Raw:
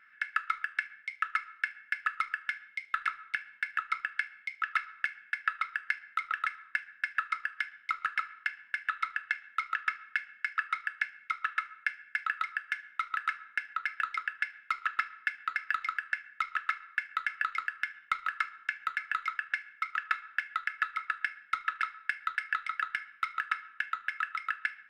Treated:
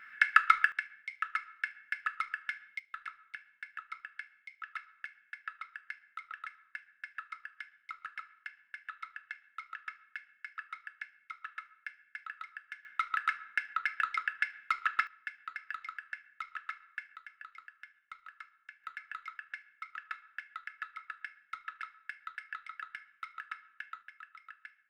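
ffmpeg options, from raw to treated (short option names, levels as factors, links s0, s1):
-af "asetnsamples=n=441:p=0,asendcmd='0.72 volume volume -3.5dB;2.79 volume volume -12dB;12.85 volume volume 0.5dB;15.07 volume volume -9.5dB;17.16 volume volume -18dB;18.84 volume volume -11dB;24.03 volume volume -18dB',volume=2.51"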